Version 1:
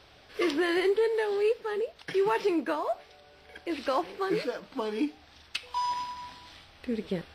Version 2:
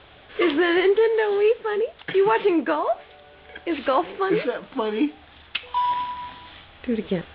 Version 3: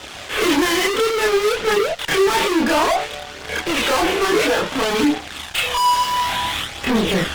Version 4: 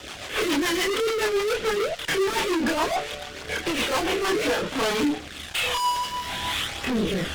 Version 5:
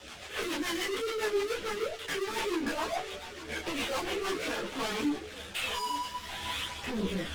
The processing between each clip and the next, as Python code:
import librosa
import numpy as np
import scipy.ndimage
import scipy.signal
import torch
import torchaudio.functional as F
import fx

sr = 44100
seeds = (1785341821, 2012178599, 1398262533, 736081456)

y1 = scipy.signal.sosfilt(scipy.signal.ellip(4, 1.0, 50, 3500.0, 'lowpass', fs=sr, output='sos'), x)
y1 = F.gain(torch.from_numpy(y1), 8.0).numpy()
y2 = fx.tilt_eq(y1, sr, slope=1.5)
y2 = fx.fuzz(y2, sr, gain_db=40.0, gate_db=-48.0)
y2 = fx.chorus_voices(y2, sr, voices=2, hz=0.29, base_ms=29, depth_ms=2.0, mix_pct=55)
y3 = fx.leveller(y2, sr, passes=2)
y3 = fx.rotary_switch(y3, sr, hz=7.0, then_hz=1.1, switch_at_s=3.98)
y3 = F.gain(torch.from_numpy(y3), -8.0).numpy()
y4 = y3 + 10.0 ** (-14.5 / 20.0) * np.pad(y3, (int(864 * sr / 1000.0), 0))[:len(y3)]
y4 = fx.ensemble(y4, sr)
y4 = F.gain(torch.from_numpy(y4), -5.5).numpy()